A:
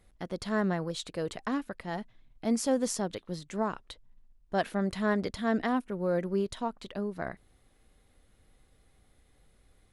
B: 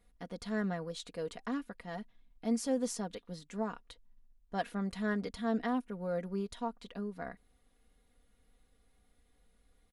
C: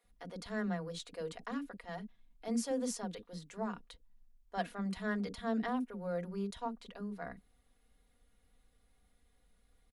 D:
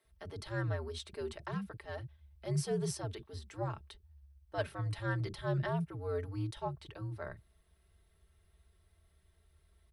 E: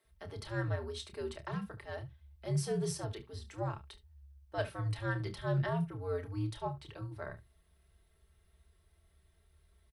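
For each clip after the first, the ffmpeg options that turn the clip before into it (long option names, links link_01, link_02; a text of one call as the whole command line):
ffmpeg -i in.wav -af "aecho=1:1:4.2:0.59,volume=-7.5dB" out.wav
ffmpeg -i in.wav -filter_complex "[0:a]acrossover=split=350[link_01][link_02];[link_01]adelay=40[link_03];[link_03][link_02]amix=inputs=2:normalize=0,volume=-1dB" out.wav
ffmpeg -i in.wav -af "bandreject=frequency=7000:width=6,afreqshift=-86,volume=1dB" out.wav
ffmpeg -i in.wav -af "aecho=1:1:29|72:0.316|0.133" out.wav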